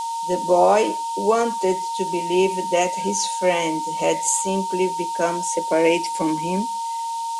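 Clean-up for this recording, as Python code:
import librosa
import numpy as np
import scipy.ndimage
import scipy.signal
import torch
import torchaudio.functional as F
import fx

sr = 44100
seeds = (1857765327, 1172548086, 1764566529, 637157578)

y = fx.notch(x, sr, hz=920.0, q=30.0)
y = fx.noise_reduce(y, sr, print_start_s=6.87, print_end_s=7.37, reduce_db=30.0)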